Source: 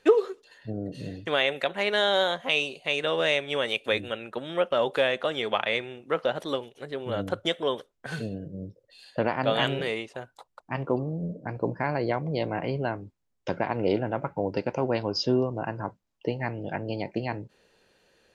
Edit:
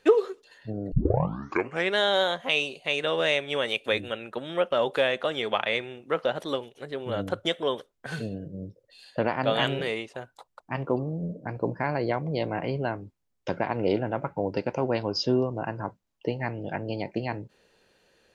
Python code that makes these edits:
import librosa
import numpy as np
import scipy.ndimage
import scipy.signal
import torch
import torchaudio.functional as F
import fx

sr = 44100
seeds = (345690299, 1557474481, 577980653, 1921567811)

y = fx.edit(x, sr, fx.tape_start(start_s=0.92, length_s=1.04), tone=tone)